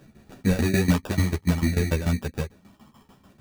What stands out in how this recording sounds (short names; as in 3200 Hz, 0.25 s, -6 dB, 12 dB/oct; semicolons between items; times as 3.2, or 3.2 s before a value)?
tremolo saw down 6.8 Hz, depth 90%; phasing stages 12, 0.59 Hz, lowest notch 600–1200 Hz; aliases and images of a low sample rate 2100 Hz, jitter 0%; a shimmering, thickened sound